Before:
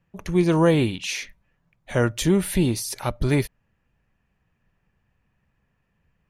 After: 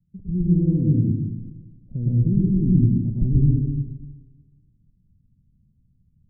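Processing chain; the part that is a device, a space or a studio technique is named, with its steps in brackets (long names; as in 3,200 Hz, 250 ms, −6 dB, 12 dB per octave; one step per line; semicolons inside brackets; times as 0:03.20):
club heard from the street (brickwall limiter −13.5 dBFS, peak gain reduction 7.5 dB; low-pass filter 230 Hz 24 dB per octave; convolution reverb RT60 1.1 s, pre-delay 102 ms, DRR −5.5 dB)
delay with a high-pass on its return 124 ms, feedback 75%, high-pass 2,200 Hz, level −6 dB
level +2.5 dB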